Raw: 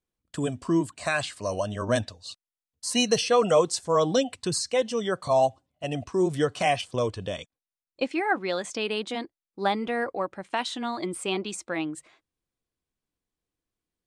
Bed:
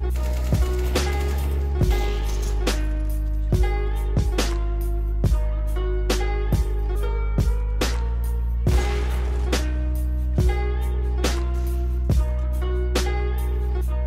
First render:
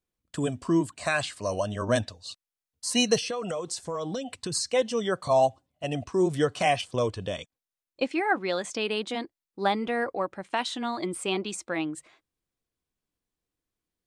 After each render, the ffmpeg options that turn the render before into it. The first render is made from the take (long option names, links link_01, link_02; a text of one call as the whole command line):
ffmpeg -i in.wav -filter_complex "[0:a]asettb=1/sr,asplit=3[link_01][link_02][link_03];[link_01]atrim=end=3.174[link_04];[link_02]atrim=start=3.17:end=4.55,asetpts=PTS-STARTPTS,afade=type=in:duration=0.004:curve=qsin,afade=type=out:start_time=1.376:duration=0.004:curve=qsin,acompressor=threshold=-28dB:ratio=10:attack=3.2:release=140:knee=1:detection=peak[link_05];[link_03]atrim=start=4.546[link_06];[link_04][link_05]acrossfade=duration=0.004:curve1=hsin:curve2=qsin[link_07];[link_07][link_06]acrossfade=duration=0.004:curve1=qsin:curve2=hsin" out.wav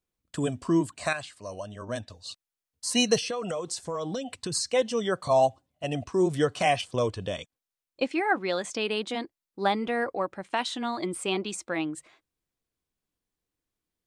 ffmpeg -i in.wav -filter_complex "[0:a]asplit=3[link_01][link_02][link_03];[link_01]atrim=end=1.132[link_04];[link_02]atrim=start=1.128:end=2.102,asetpts=PTS-STARTPTS,volume=-9dB[link_05];[link_03]atrim=start=2.098[link_06];[link_04][link_05]acrossfade=duration=0.004:curve1=hsin:curve2=hsin[link_07];[link_07][link_06]acrossfade=duration=0.004:curve1=hsin:curve2=hsin" out.wav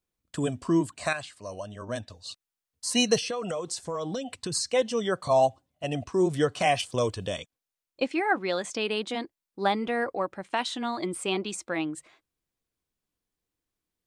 ffmpeg -i in.wav -filter_complex "[0:a]asettb=1/sr,asplit=3[link_01][link_02][link_03];[link_01]atrim=end=6.764[link_04];[link_02]atrim=start=6.76:end=7.39,asetpts=PTS-STARTPTS,afade=type=in:duration=0.004:curve=qsin,afade=type=out:start_time=0.626:duration=0.004:curve=qsin,highshelf=frequency=6200:gain=10[link_05];[link_03]atrim=start=7.386[link_06];[link_04][link_05]acrossfade=duration=0.004:curve1=hsin:curve2=qsin[link_07];[link_07][link_06]acrossfade=duration=0.004:curve1=qsin:curve2=hsin" out.wav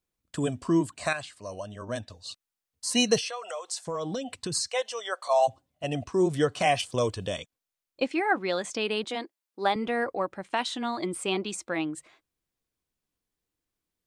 ffmpeg -i in.wav -filter_complex "[0:a]asettb=1/sr,asplit=3[link_01][link_02][link_03];[link_01]atrim=end=3.214[link_04];[link_02]atrim=start=3.21:end=3.87,asetpts=PTS-STARTPTS,afade=type=in:duration=0.004:curve=qsin,afade=type=out:start_time=0.656:duration=0.004:curve=qsin,highpass=frequency=600:width=0.5412,highpass=frequency=600:width=1.3066[link_05];[link_03]atrim=start=3.866[link_06];[link_04][link_05]acrossfade=duration=0.004:curve1=hsin:curve2=qsin[link_07];[link_07][link_06]acrossfade=duration=0.004:curve1=qsin:curve2=hsin,asplit=3[link_08][link_09][link_10];[link_08]afade=type=out:start_time=4.67:duration=0.02[link_11];[link_09]highpass=frequency=580:width=0.5412,highpass=frequency=580:width=1.3066,afade=type=in:start_time=4.67:duration=0.02,afade=type=out:start_time=5.47:duration=0.02[link_12];[link_10]afade=type=in:start_time=5.47:duration=0.02[link_13];[link_11][link_12][link_13]amix=inputs=3:normalize=0,asettb=1/sr,asplit=3[link_14][link_15][link_16];[link_14]atrim=end=9.044[link_17];[link_15]atrim=start=9.04:end=9.76,asetpts=PTS-STARTPTS,afade=type=in:duration=0.004:curve=qsin,afade=type=out:start_time=0.716:duration=0.004:curve=qsin,highpass=280[link_18];[link_16]atrim=start=9.756[link_19];[link_17][link_18]acrossfade=duration=0.004:curve1=hsin:curve2=qsin[link_20];[link_20][link_19]acrossfade=duration=0.004:curve1=qsin:curve2=hsin" out.wav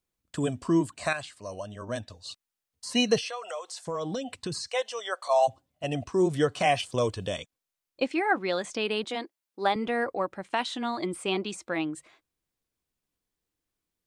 ffmpeg -i in.wav -filter_complex "[0:a]acrossover=split=4300[link_01][link_02];[link_02]acompressor=threshold=-39dB:ratio=4:attack=1:release=60[link_03];[link_01][link_03]amix=inputs=2:normalize=0" out.wav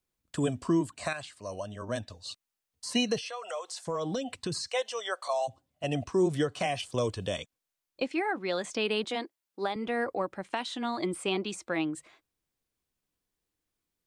ffmpeg -i in.wav -filter_complex "[0:a]alimiter=limit=-17dB:level=0:latency=1:release=431,acrossover=split=440|3000[link_01][link_02][link_03];[link_02]acompressor=threshold=-29dB:ratio=6[link_04];[link_01][link_04][link_03]amix=inputs=3:normalize=0" out.wav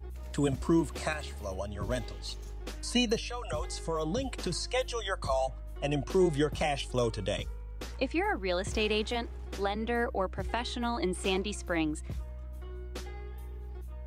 ffmpeg -i in.wav -i bed.wav -filter_complex "[1:a]volume=-18.5dB[link_01];[0:a][link_01]amix=inputs=2:normalize=0" out.wav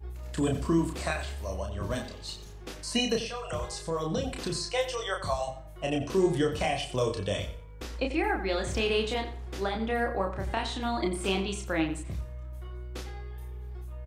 ffmpeg -i in.wav -filter_complex "[0:a]asplit=2[link_01][link_02];[link_02]adelay=31,volume=-4dB[link_03];[link_01][link_03]amix=inputs=2:normalize=0,asplit=2[link_04][link_05];[link_05]adelay=89,lowpass=frequency=4400:poles=1,volume=-11dB,asplit=2[link_06][link_07];[link_07]adelay=89,lowpass=frequency=4400:poles=1,volume=0.3,asplit=2[link_08][link_09];[link_09]adelay=89,lowpass=frequency=4400:poles=1,volume=0.3[link_10];[link_04][link_06][link_08][link_10]amix=inputs=4:normalize=0" out.wav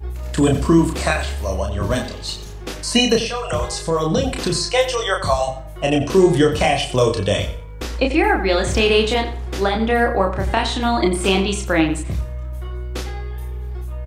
ffmpeg -i in.wav -af "volume=12dB,alimiter=limit=-3dB:level=0:latency=1" out.wav